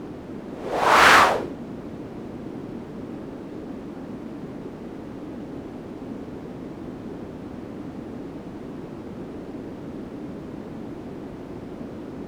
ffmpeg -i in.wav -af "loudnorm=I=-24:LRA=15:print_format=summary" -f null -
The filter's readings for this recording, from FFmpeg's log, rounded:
Input Integrated:    -27.4 LUFS
Input True Peak:      -2.6 dBTP
Input LRA:            14.0 LU
Input Threshold:     -37.4 LUFS